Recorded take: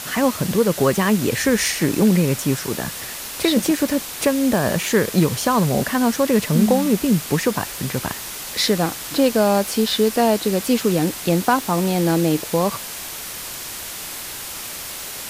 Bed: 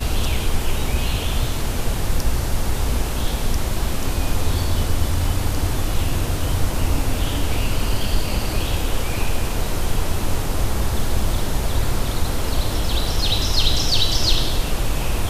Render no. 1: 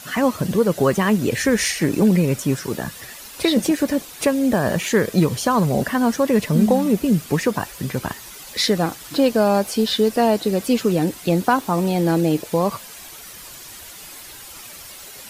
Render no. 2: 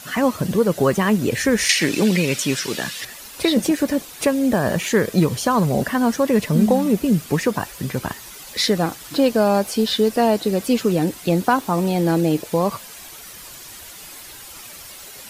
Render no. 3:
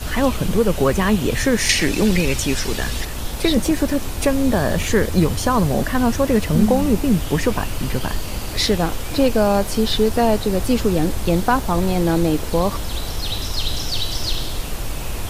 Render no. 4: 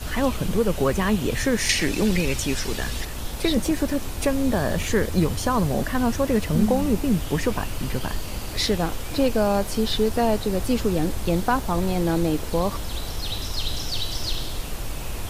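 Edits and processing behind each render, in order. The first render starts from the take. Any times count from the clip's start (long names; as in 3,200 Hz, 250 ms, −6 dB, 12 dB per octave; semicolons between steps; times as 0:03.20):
broadband denoise 10 dB, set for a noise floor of −32 dBFS
0:01.69–0:03.05: meter weighting curve D
mix in bed −5 dB
level −4.5 dB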